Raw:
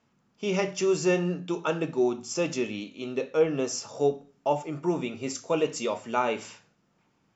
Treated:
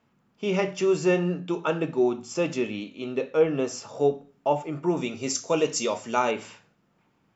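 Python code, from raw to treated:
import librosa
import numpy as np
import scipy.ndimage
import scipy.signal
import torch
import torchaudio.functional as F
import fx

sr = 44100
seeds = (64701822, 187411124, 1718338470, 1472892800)

y = fx.peak_eq(x, sr, hz=6000.0, db=fx.steps((0.0, -7.0), (4.97, 7.0), (6.31, -6.5)), octaves=1.0)
y = y * librosa.db_to_amplitude(2.0)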